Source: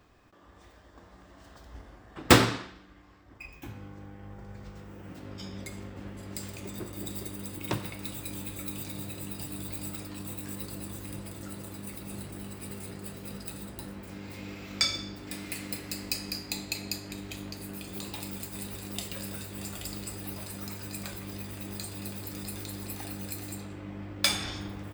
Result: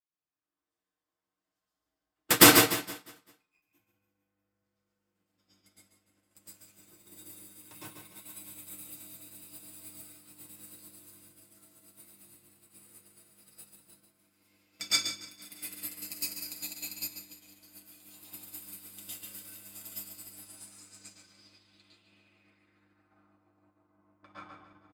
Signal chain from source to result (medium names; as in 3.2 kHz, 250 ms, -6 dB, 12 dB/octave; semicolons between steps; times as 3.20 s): dynamic bell 4.7 kHz, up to -4 dB, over -47 dBFS, Q 0.99; hard clipper -10.5 dBFS, distortion -16 dB; tilt EQ +2.5 dB/octave; comb 6.5 ms, depth 57%; reverse bouncing-ball echo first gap 140 ms, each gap 1.1×, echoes 5; reverberation RT60 0.40 s, pre-delay 104 ms, DRR -6.5 dB; low-pass sweep 13 kHz -> 1.1 kHz, 20.24–23.43 s; loudness maximiser -2.5 dB; upward expansion 2.5:1, over -40 dBFS